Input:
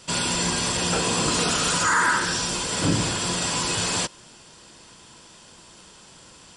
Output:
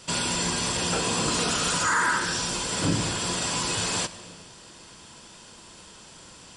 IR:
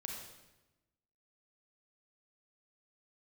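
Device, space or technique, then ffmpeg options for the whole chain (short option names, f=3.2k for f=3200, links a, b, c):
compressed reverb return: -filter_complex "[0:a]asplit=2[a][b];[1:a]atrim=start_sample=2205[c];[b][c]afir=irnorm=-1:irlink=0,acompressor=threshold=-35dB:ratio=5,volume=0.5dB[d];[a][d]amix=inputs=2:normalize=0,volume=-4dB"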